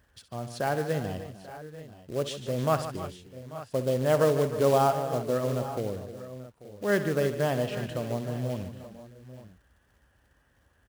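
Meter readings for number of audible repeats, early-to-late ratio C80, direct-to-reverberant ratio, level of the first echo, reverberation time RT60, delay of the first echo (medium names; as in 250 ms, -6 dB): 5, no reverb, no reverb, -13.0 dB, no reverb, 64 ms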